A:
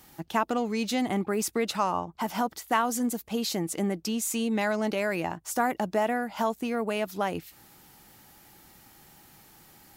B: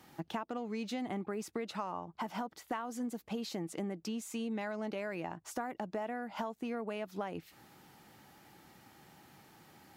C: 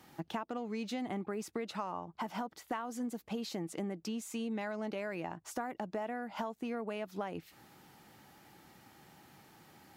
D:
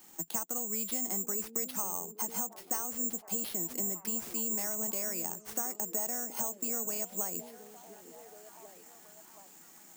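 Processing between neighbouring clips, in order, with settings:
high-pass filter 96 Hz 12 dB per octave; downward compressor, threshold −34 dBFS, peak gain reduction 14 dB; low-pass filter 2,900 Hz 6 dB per octave; level −1 dB
no processing that can be heard
elliptic high-pass filter 170 Hz; bad sample-rate conversion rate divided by 6×, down none, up zero stuff; echo through a band-pass that steps 722 ms, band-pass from 320 Hz, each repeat 0.7 octaves, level −7 dB; level −3.5 dB

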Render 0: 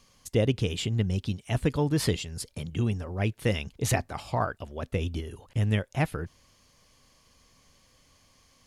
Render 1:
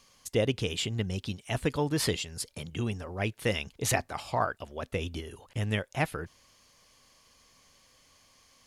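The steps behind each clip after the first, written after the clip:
low-shelf EQ 320 Hz −8.5 dB
level +1.5 dB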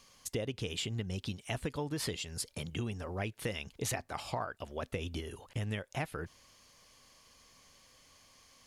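downward compressor 6 to 1, threshold −33 dBFS, peak gain reduction 11.5 dB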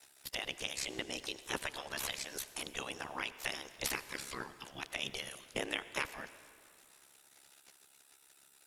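gate on every frequency bin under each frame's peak −15 dB weak
ring modulation 34 Hz
convolution reverb RT60 2.5 s, pre-delay 67 ms, DRR 14 dB
level +11 dB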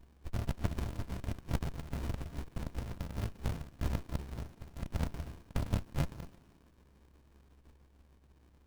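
samples in bit-reversed order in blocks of 64 samples
four-comb reverb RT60 3.2 s, DRR 19.5 dB
windowed peak hold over 65 samples
level +2 dB

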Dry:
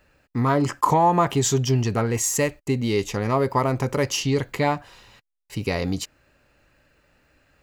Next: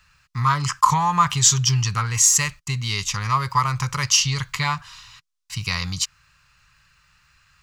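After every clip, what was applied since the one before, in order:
drawn EQ curve 160 Hz 0 dB, 260 Hz −22 dB, 660 Hz −19 dB, 1,100 Hz +7 dB, 1,700 Hz +1 dB, 5,800 Hz +10 dB, 9,300 Hz +4 dB, 13,000 Hz −1 dB
level +1.5 dB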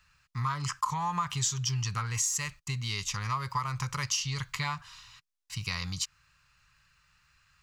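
downward compressor 4 to 1, threshold −20 dBFS, peak gain reduction 10 dB
level −7.5 dB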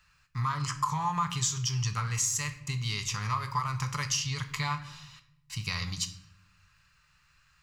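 convolution reverb RT60 0.80 s, pre-delay 7 ms, DRR 8 dB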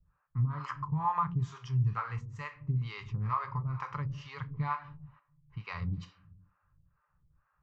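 low-pass that shuts in the quiet parts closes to 940 Hz, open at −26 dBFS
two-band tremolo in antiphase 2.2 Hz, depth 100%, crossover 450 Hz
low-pass filter 1,300 Hz 12 dB per octave
level +4 dB

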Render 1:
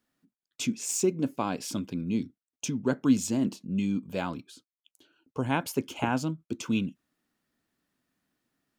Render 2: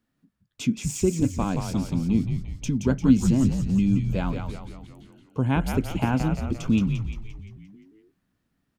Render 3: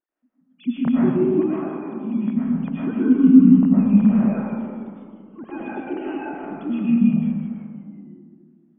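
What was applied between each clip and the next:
bass and treble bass +10 dB, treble −4 dB; echo with shifted repeats 174 ms, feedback 55%, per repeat −78 Hz, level −5.5 dB
three sine waves on the formant tracks; convolution reverb RT60 1.9 s, pre-delay 75 ms, DRR −8 dB; level −5 dB

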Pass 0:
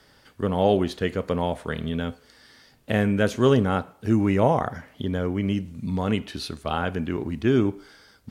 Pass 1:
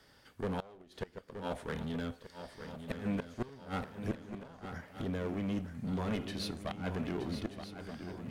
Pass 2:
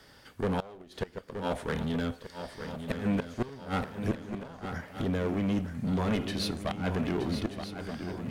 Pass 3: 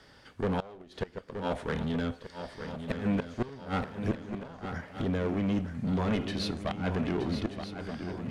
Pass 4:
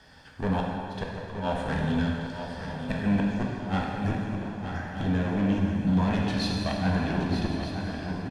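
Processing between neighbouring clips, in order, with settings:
asymmetric clip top −28 dBFS; gate with flip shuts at −18 dBFS, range −24 dB; feedback echo with a long and a short gap by turns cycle 1,231 ms, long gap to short 3 to 1, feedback 42%, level −9 dB; level −6.5 dB
soft clipping −25.5 dBFS, distortion −25 dB; level +7 dB
high-frequency loss of the air 52 metres
comb filter 1.2 ms, depth 47%; dense smooth reverb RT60 2.4 s, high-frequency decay 0.85×, DRR −1.5 dB

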